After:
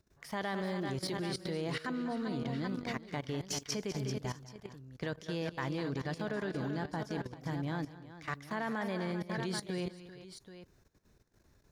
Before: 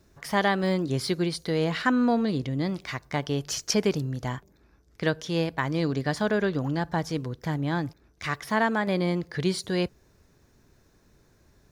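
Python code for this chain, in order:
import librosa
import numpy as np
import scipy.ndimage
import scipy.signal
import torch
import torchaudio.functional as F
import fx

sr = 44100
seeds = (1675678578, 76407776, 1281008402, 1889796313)

y = fx.echo_multitap(x, sr, ms=(198, 238, 389, 780), db=(-12.0, -16.0, -11.0, -10.5))
y = fx.level_steps(y, sr, step_db=15)
y = F.gain(torch.from_numpy(y), -5.5).numpy()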